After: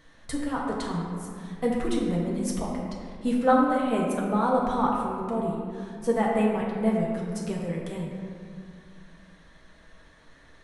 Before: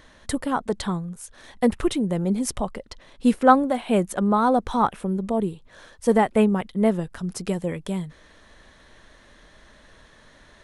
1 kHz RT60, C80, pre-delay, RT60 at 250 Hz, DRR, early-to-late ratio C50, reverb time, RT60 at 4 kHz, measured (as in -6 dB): 2.1 s, 2.0 dB, 4 ms, 2.7 s, -4.0 dB, 0.5 dB, 2.2 s, 1.3 s